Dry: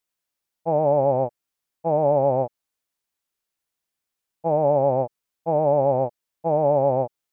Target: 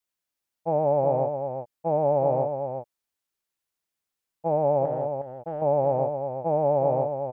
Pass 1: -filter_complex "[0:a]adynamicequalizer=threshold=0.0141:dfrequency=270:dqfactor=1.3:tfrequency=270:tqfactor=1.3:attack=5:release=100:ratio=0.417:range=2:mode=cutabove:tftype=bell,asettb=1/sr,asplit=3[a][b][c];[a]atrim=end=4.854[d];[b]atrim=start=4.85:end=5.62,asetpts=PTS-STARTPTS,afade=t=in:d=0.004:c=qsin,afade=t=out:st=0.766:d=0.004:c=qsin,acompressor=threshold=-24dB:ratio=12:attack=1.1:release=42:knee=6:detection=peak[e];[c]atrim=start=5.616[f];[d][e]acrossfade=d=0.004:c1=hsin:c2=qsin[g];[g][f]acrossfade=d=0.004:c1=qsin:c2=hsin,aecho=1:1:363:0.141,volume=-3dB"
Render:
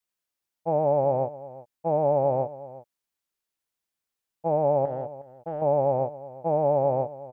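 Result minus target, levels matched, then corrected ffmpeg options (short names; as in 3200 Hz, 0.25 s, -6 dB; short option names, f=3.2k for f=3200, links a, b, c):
echo-to-direct -10 dB
-filter_complex "[0:a]adynamicequalizer=threshold=0.0141:dfrequency=270:dqfactor=1.3:tfrequency=270:tqfactor=1.3:attack=5:release=100:ratio=0.417:range=2:mode=cutabove:tftype=bell,asettb=1/sr,asplit=3[a][b][c];[a]atrim=end=4.854[d];[b]atrim=start=4.85:end=5.62,asetpts=PTS-STARTPTS,afade=t=in:d=0.004:c=qsin,afade=t=out:st=0.766:d=0.004:c=qsin,acompressor=threshold=-24dB:ratio=12:attack=1.1:release=42:knee=6:detection=peak[e];[c]atrim=start=5.616[f];[d][e]acrossfade=d=0.004:c1=hsin:c2=qsin[g];[g][f]acrossfade=d=0.004:c1=qsin:c2=hsin,aecho=1:1:363:0.447,volume=-3dB"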